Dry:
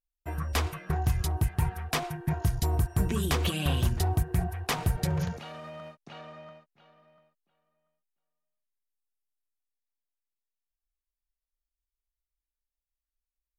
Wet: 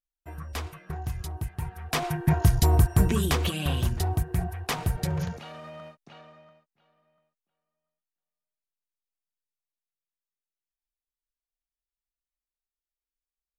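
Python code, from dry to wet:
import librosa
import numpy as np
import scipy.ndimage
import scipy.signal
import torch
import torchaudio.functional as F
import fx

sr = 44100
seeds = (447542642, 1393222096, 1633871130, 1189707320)

y = fx.gain(x, sr, db=fx.line((1.72, -6.0), (2.12, 7.0), (2.9, 7.0), (3.53, 0.0), (5.83, 0.0), (6.52, -8.5)))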